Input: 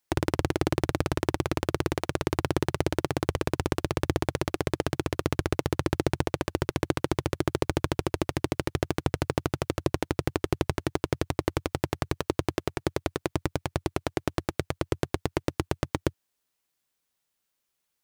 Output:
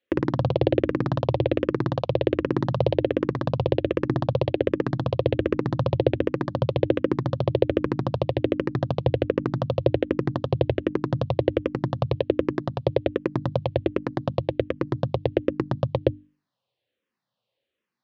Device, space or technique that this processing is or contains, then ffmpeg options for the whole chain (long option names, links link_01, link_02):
barber-pole phaser into a guitar amplifier: -filter_complex "[0:a]bandreject=frequency=50:width_type=h:width=6,bandreject=frequency=100:width_type=h:width=6,bandreject=frequency=150:width_type=h:width=6,bandreject=frequency=200:width_type=h:width=6,bandreject=frequency=250:width_type=h:width=6,bandreject=frequency=300:width_type=h:width=6,asplit=2[link_01][link_02];[link_02]afreqshift=-1.3[link_03];[link_01][link_03]amix=inputs=2:normalize=1,asoftclip=type=tanh:threshold=-14dB,highpass=100,equalizer=frequency=120:width_type=q:width=4:gain=7,equalizer=frequency=230:width_type=q:width=4:gain=4,equalizer=frequency=530:width_type=q:width=4:gain=9,equalizer=frequency=850:width_type=q:width=4:gain=-3,equalizer=frequency=1400:width_type=q:width=4:gain=-7,equalizer=frequency=2200:width_type=q:width=4:gain=-5,lowpass=frequency=3700:width=0.5412,lowpass=frequency=3700:width=1.3066,volume=7dB"